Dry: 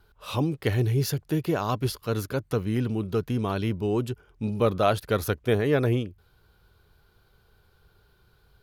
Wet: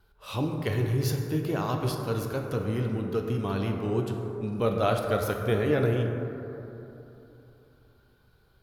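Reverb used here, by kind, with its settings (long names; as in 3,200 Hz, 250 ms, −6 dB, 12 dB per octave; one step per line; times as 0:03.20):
dense smooth reverb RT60 3.2 s, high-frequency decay 0.3×, DRR 2 dB
level −4 dB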